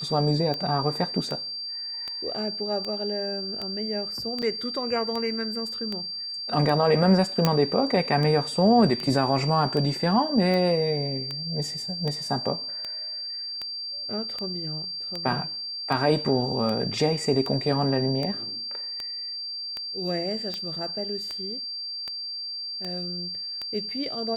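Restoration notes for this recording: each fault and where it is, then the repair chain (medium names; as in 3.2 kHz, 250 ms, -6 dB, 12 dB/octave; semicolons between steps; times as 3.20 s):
tick 78 rpm -18 dBFS
whine 4.7 kHz -31 dBFS
4.42–4.43 s: dropout 6.5 ms
7.45 s: pop -6 dBFS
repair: de-click; band-stop 4.7 kHz, Q 30; interpolate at 4.42 s, 6.5 ms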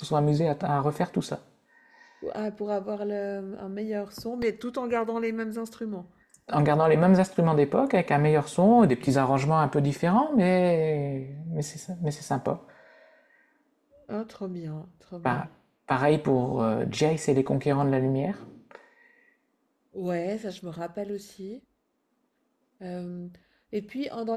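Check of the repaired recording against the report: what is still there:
nothing left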